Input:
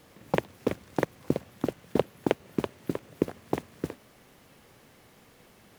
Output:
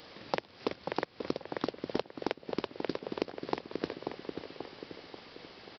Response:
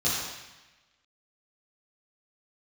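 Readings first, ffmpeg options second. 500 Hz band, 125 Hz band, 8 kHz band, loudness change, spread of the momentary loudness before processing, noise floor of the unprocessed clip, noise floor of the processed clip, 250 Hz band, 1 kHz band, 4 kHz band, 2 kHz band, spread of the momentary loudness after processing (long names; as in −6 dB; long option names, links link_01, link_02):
−5.0 dB, −11.5 dB, below −10 dB, −6.0 dB, 7 LU, −58 dBFS, −59 dBFS, −6.5 dB, −1.5 dB, +3.0 dB, −2.5 dB, 11 LU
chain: -filter_complex "[0:a]aresample=11025,acrusher=bits=5:mode=log:mix=0:aa=0.000001,aresample=44100,bass=frequency=250:gain=-9,treble=frequency=4000:gain=12,asplit=2[link_01][link_02];[link_02]adelay=536,lowpass=frequency=2300:poles=1,volume=-12dB,asplit=2[link_03][link_04];[link_04]adelay=536,lowpass=frequency=2300:poles=1,volume=0.52,asplit=2[link_05][link_06];[link_06]adelay=536,lowpass=frequency=2300:poles=1,volume=0.52,asplit=2[link_07][link_08];[link_08]adelay=536,lowpass=frequency=2300:poles=1,volume=0.52,asplit=2[link_09][link_10];[link_10]adelay=536,lowpass=frequency=2300:poles=1,volume=0.52[link_11];[link_01][link_03][link_05][link_07][link_09][link_11]amix=inputs=6:normalize=0,acompressor=threshold=-34dB:ratio=16,volume=5.5dB"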